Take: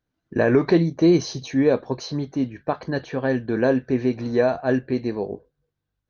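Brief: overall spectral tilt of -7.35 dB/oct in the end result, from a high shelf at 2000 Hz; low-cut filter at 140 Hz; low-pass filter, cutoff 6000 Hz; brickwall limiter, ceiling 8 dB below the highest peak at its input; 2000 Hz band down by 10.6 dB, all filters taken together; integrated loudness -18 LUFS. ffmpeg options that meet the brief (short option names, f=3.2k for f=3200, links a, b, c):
-af "highpass=140,lowpass=6k,highshelf=f=2k:g=-9,equalizer=f=2k:t=o:g=-9,volume=9dB,alimiter=limit=-6.5dB:level=0:latency=1"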